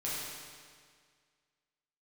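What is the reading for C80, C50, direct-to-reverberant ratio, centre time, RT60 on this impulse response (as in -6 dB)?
0.0 dB, -2.5 dB, -8.5 dB, 125 ms, 1.9 s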